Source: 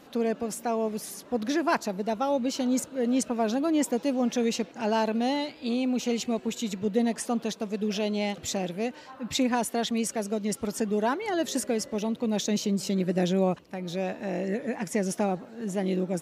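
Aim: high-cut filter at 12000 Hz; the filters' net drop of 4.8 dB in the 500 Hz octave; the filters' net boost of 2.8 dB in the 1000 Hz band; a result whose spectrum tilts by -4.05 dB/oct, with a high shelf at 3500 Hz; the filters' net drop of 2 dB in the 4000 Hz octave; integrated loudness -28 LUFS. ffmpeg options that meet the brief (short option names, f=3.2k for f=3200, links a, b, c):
-af "lowpass=12k,equalizer=f=500:t=o:g=-8.5,equalizer=f=1k:t=o:g=7,highshelf=f=3.5k:g=7,equalizer=f=4k:t=o:g=-8,volume=1.5dB"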